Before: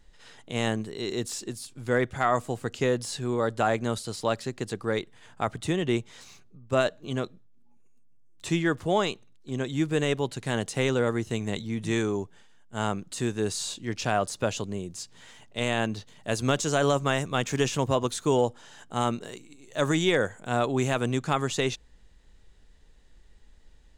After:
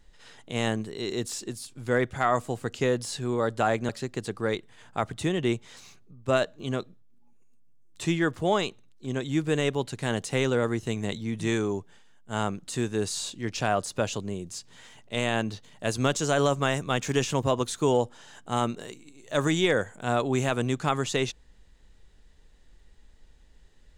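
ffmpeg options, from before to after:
ffmpeg -i in.wav -filter_complex "[0:a]asplit=2[link_01][link_02];[link_01]atrim=end=3.892[link_03];[link_02]atrim=start=4.328[link_04];[link_03][link_04]acrossfade=duration=0.004:curve1=hsin:curve2=hsin" out.wav

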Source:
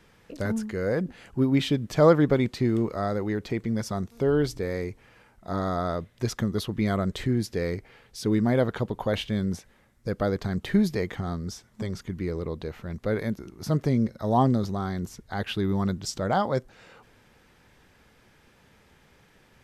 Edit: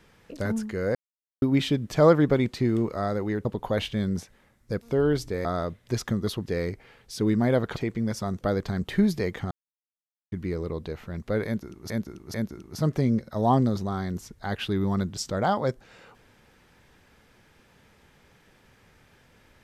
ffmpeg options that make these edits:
ffmpeg -i in.wav -filter_complex "[0:a]asplit=13[link_01][link_02][link_03][link_04][link_05][link_06][link_07][link_08][link_09][link_10][link_11][link_12][link_13];[link_01]atrim=end=0.95,asetpts=PTS-STARTPTS,afade=type=out:start_time=0.946:duration=0.004:curve=hsin[link_14];[link_02]atrim=start=0.95:end=1.42,asetpts=PTS-STARTPTS,volume=0[link_15];[link_03]atrim=start=1.42:end=3.452,asetpts=PTS-STARTPTS,afade=type=in:duration=0.004:curve=hsin[link_16];[link_04]atrim=start=8.808:end=10.172[link_17];[link_05]atrim=start=4.098:end=4.742[link_18];[link_06]atrim=start=5.758:end=6.772[link_19];[link_07]atrim=start=7.508:end=8.812[link_20];[link_08]atrim=start=3.448:end=4.102[link_21];[link_09]atrim=start=10.168:end=11.27,asetpts=PTS-STARTPTS,afade=type=out:start_time=1.098:duration=0.004:curve=hsin[link_22];[link_10]atrim=start=11.27:end=12.08,asetpts=PTS-STARTPTS,volume=0[link_23];[link_11]atrim=start=12.08:end=13.662,asetpts=PTS-STARTPTS,afade=type=in:duration=0.004:curve=hsin[link_24];[link_12]atrim=start=13.218:end=13.662[link_25];[link_13]atrim=start=13.218[link_26];[link_14][link_15][link_16]concat=n=3:v=0:a=1[link_27];[link_27][link_17]acrossfade=duration=0.004:curve1=hsin:curve2=hsin[link_28];[link_28][link_18]acrossfade=duration=0.004:curve1=hsin:curve2=hsin[link_29];[link_29][link_19]acrossfade=duration=0.004:curve1=hsin:curve2=hsin[link_30];[link_30][link_20]acrossfade=duration=0.004:curve1=hsin:curve2=hsin[link_31];[link_31][link_21]acrossfade=duration=0.004:curve1=hsin:curve2=hsin[link_32];[link_22][link_23][link_24]concat=n=3:v=0:a=1[link_33];[link_32][link_33]acrossfade=duration=0.004:curve1=hsin:curve2=hsin[link_34];[link_34][link_25]acrossfade=duration=0.004:curve1=hsin:curve2=hsin[link_35];[link_35][link_26]acrossfade=duration=0.004:curve1=hsin:curve2=hsin" out.wav

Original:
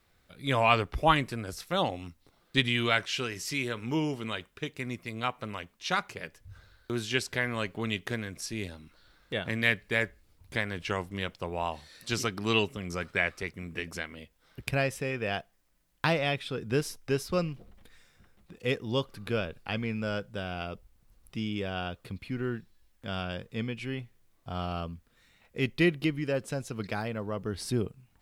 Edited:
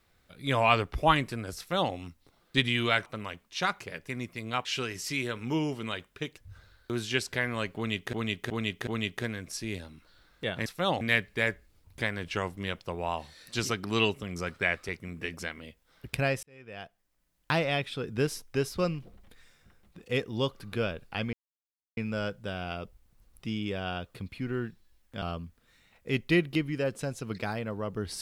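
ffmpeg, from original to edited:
ffmpeg -i in.wav -filter_complex "[0:a]asplit=13[link_01][link_02][link_03][link_04][link_05][link_06][link_07][link_08][link_09][link_10][link_11][link_12][link_13];[link_01]atrim=end=3.062[link_14];[link_02]atrim=start=5.348:end=6.372[link_15];[link_03]atrim=start=4.778:end=5.352[link_16];[link_04]atrim=start=3.058:end=4.782[link_17];[link_05]atrim=start=6.368:end=8.132[link_18];[link_06]atrim=start=7.758:end=8.132[link_19];[link_07]atrim=start=7.758:end=8.132[link_20];[link_08]atrim=start=7.758:end=9.552[link_21];[link_09]atrim=start=1.578:end=1.932[link_22];[link_10]atrim=start=9.548:end=14.97,asetpts=PTS-STARTPTS,afade=type=out:start_time=5.418:duration=0.004:curve=hsin[link_23];[link_11]atrim=start=14.97:end=19.87,asetpts=PTS-STARTPTS,afade=type=in:duration=1.22,afade=type=out:start_time=4.896:duration=0.004:curve=hsin,apad=pad_dur=0.64[link_24];[link_12]atrim=start=19.87:end=23.122,asetpts=PTS-STARTPTS,afade=type=in:duration=0.004:curve=hsin[link_25];[link_13]atrim=start=24.708[link_26];[link_14][link_15]acrossfade=duration=0.004:curve1=hsin:curve2=hsin[link_27];[link_27][link_16]acrossfade=duration=0.004:curve1=hsin:curve2=hsin[link_28];[link_28][link_17]acrossfade=duration=0.004:curve1=hsin:curve2=hsin[link_29];[link_29][link_18]acrossfade=duration=0.004:curve1=hsin:curve2=hsin[link_30];[link_30][link_19]acrossfade=duration=0.004:curve1=hsin:curve2=hsin[link_31];[link_31][link_20]acrossfade=duration=0.004:curve1=hsin:curve2=hsin[link_32];[link_32][link_21]acrossfade=duration=0.004:curve1=hsin:curve2=hsin[link_33];[link_33][link_22]acrossfade=duration=0.004:curve1=hsin:curve2=hsin[link_34];[link_23][link_24][link_25]concat=n=3:v=0:a=1[link_35];[link_34][link_35]acrossfade=duration=0.004:curve1=hsin:curve2=hsin[link_36];[link_36][link_26]acrossfade=duration=0.004:curve1=hsin:curve2=hsin" out.wav

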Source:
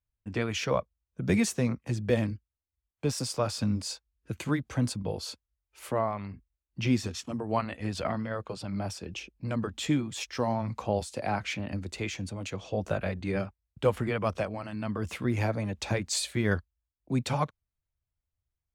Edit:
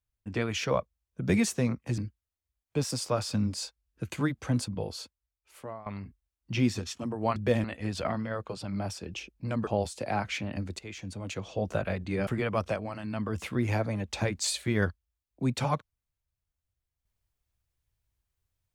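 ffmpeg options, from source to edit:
ffmpeg -i in.wav -filter_complex "[0:a]asplit=8[link_01][link_02][link_03][link_04][link_05][link_06][link_07][link_08];[link_01]atrim=end=1.982[link_09];[link_02]atrim=start=2.258:end=6.14,asetpts=PTS-STARTPTS,afade=type=out:start_time=2.672:duration=1.21:silence=0.141254[link_10];[link_03]atrim=start=6.14:end=7.642,asetpts=PTS-STARTPTS,afade=type=in:duration=0.004:curve=hsin:silence=0.141254[link_11];[link_04]atrim=start=1.978:end=2.262[link_12];[link_05]atrim=start=7.638:end=9.672[link_13];[link_06]atrim=start=10.828:end=11.95,asetpts=PTS-STARTPTS,afade=type=out:start_time=1.118:duration=0.004:curve=hsin:silence=0.199526[link_14];[link_07]atrim=start=11.95:end=13.432,asetpts=PTS-STARTPTS,afade=type=in:duration=0.48:silence=0.199526[link_15];[link_08]atrim=start=13.958[link_16];[link_10][link_11]concat=n=2:v=0:a=1[link_17];[link_09][link_17]acrossfade=duration=0.004:curve1=hsin:curve2=hsin[link_18];[link_18][link_12]acrossfade=duration=0.004:curve1=hsin:curve2=hsin[link_19];[link_19][link_13]acrossfade=duration=0.004:curve1=hsin:curve2=hsin[link_20];[link_14][link_15]concat=n=2:v=0:a=1[link_21];[link_20][link_21]acrossfade=duration=0.004:curve1=hsin:curve2=hsin[link_22];[link_22][link_16]acrossfade=duration=0.004:curve1=hsin:curve2=hsin" out.wav

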